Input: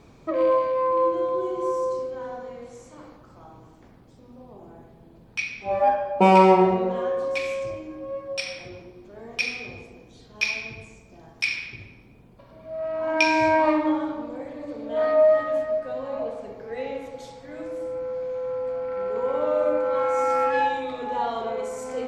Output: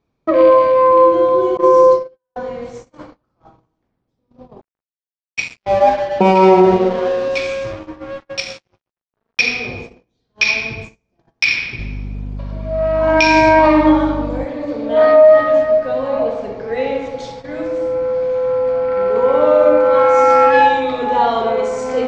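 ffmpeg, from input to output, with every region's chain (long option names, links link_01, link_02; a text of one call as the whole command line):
ffmpeg -i in.wav -filter_complex "[0:a]asettb=1/sr,asplit=3[link_01][link_02][link_03];[link_01]atrim=end=1.574[link_04];[link_02]atrim=start=1.57:end=2.36,asetpts=PTS-STARTPTS,afade=type=in:duration=0.004:curve=qsin,afade=type=out:start_time=0.786:duration=0.004:curve=qsin,lowpass=6100,agate=range=-32dB:threshold=-28dB:ratio=16:release=100:detection=peak,aecho=1:1:5.9:0.99,atrim=end_sample=34839[link_05];[link_03]atrim=start=2.356[link_06];[link_04][link_05]acrossfade=duration=0.004:curve1=hsin:curve2=qsin[link_07];[link_07][link_06]acrossfade=duration=0.004:curve1=qsin:curve2=hsin,asettb=1/sr,asplit=3[link_08][link_09][link_10];[link_08]atrim=end=4.614[link_11];[link_09]atrim=start=4.61:end=9.39,asetpts=PTS-STARTPTS,afade=type=in:duration=0.004:curve=qsin,afade=type=out:start_time=4.776:duration=0.004:curve=qsin,equalizer=frequency=1500:width=0.59:gain=-5,asplit=2[link_12][link_13];[link_13]adelay=19,volume=-10.5dB[link_14];[link_12][link_14]amix=inputs=2:normalize=0,atrim=end_sample=210798,aeval=exprs='sgn(val(0))*max(abs(val(0))-0.0106,0)':channel_layout=same[link_15];[link_10]atrim=start=9.386[link_16];[link_11][link_15]acrossfade=duration=0.004:curve1=hsin:curve2=qsin[link_17];[link_17][link_16]acrossfade=duration=0.004:curve1=qsin:curve2=hsin,asettb=1/sr,asplit=3[link_18][link_19][link_20];[link_18]atrim=end=11.794[link_21];[link_19]atrim=start=11.79:end=14.45,asetpts=PTS-STARTPTS,afade=type=in:duration=0.004:curve=qsin,afade=type=out:start_time=2.656:duration=0.004:curve=qsin,highshelf=frequency=6900:gain=7,aeval=exprs='val(0)+0.0158*(sin(2*PI*50*n/s)+sin(2*PI*2*50*n/s)/2+sin(2*PI*3*50*n/s)/3+sin(2*PI*4*50*n/s)/4+sin(2*PI*5*50*n/s)/5)':channel_layout=same[link_22];[link_20]atrim=start=14.446[link_23];[link_21][link_22]acrossfade=duration=0.004:curve1=hsin:curve2=qsin[link_24];[link_24][link_23]acrossfade=duration=0.004:curve1=qsin:curve2=hsin,agate=range=-32dB:threshold=-43dB:ratio=16:detection=peak,lowpass=frequency=6200:width=0.5412,lowpass=frequency=6200:width=1.3066,alimiter=level_in=13dB:limit=-1dB:release=50:level=0:latency=1,volume=-1dB" out.wav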